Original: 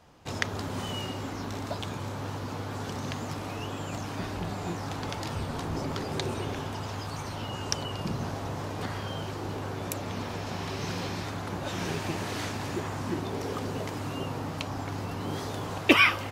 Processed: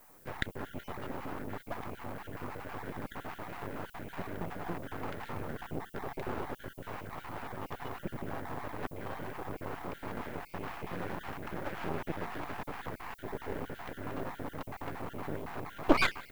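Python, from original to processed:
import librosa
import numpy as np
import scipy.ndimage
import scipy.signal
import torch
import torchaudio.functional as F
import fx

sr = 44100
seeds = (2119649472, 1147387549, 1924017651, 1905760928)

y = fx.spec_dropout(x, sr, seeds[0], share_pct=41)
y = scipy.signal.sosfilt(scipy.signal.butter(4, 1900.0, 'lowpass', fs=sr, output='sos'), y)
y = fx.low_shelf(y, sr, hz=140.0, db=-11.5)
y = np.maximum(y, 0.0)
y = fx.dmg_noise_colour(y, sr, seeds[1], colour='violet', level_db=-64.0)
y = y * 10.0 ** (3.0 / 20.0)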